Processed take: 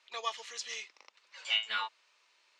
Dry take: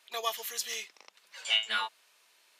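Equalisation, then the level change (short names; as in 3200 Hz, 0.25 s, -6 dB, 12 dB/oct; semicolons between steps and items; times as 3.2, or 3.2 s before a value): air absorption 83 m; speaker cabinet 360–8200 Hz, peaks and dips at 430 Hz -4 dB, 700 Hz -7 dB, 1600 Hz -4 dB, 3300 Hz -3 dB; 0.0 dB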